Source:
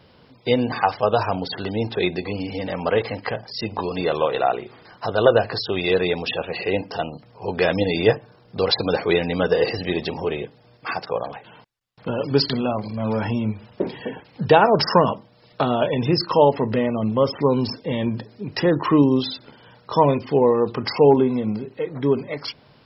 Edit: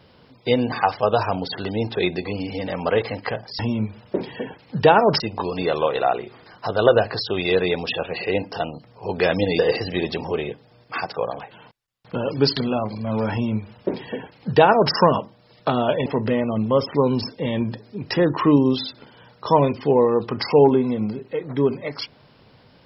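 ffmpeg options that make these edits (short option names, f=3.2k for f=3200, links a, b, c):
-filter_complex "[0:a]asplit=5[a][b][c][d][e];[a]atrim=end=3.592[f];[b]atrim=start=13.248:end=14.862[g];[c]atrim=start=3.588:end=7.982[h];[d]atrim=start=9.518:end=15.992[i];[e]atrim=start=16.518[j];[f][g]acrossfade=d=0.004:c1=hsin:c2=hsin[k];[k][h]acrossfade=d=0.004:c1=hsin:c2=hsin[l];[l][i]acrossfade=d=0.004:c1=hsin:c2=hsin[m];[m][j]acrossfade=d=0.004:c1=hsin:c2=hsin"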